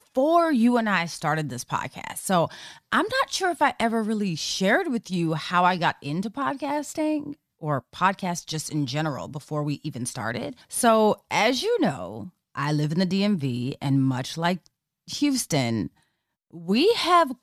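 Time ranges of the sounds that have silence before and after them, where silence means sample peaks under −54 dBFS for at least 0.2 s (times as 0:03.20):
0:07.61–0:12.30
0:12.55–0:14.67
0:15.07–0:16.03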